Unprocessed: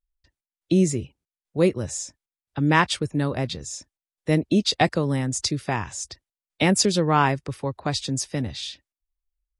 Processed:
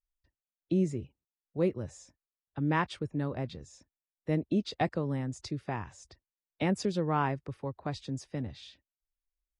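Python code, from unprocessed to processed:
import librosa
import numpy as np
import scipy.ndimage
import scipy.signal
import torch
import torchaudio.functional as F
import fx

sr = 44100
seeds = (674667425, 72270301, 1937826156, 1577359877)

y = fx.lowpass(x, sr, hz=1500.0, slope=6)
y = y * librosa.db_to_amplitude(-8.5)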